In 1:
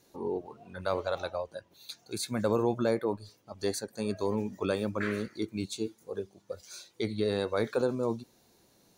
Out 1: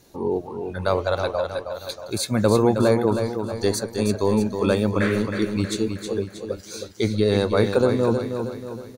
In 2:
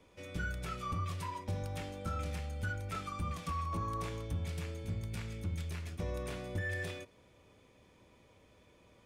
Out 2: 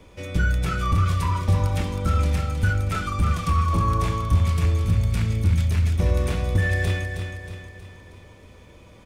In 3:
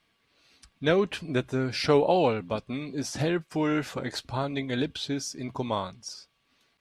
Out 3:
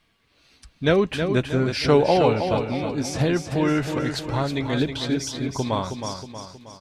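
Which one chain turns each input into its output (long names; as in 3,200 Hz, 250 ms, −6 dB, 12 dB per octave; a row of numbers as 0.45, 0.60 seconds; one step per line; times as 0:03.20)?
low-shelf EQ 100 Hz +10.5 dB
repeating echo 317 ms, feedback 48%, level −7 dB
loudness normalisation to −23 LKFS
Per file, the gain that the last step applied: +8.5, +11.5, +3.5 decibels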